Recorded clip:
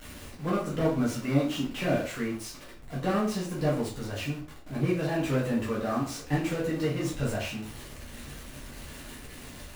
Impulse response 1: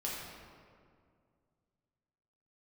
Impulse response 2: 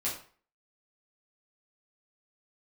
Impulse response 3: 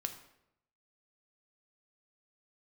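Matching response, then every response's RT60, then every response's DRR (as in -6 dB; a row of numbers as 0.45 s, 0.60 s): 2; 2.2 s, 0.45 s, 0.80 s; -5.5 dB, -6.5 dB, 6.0 dB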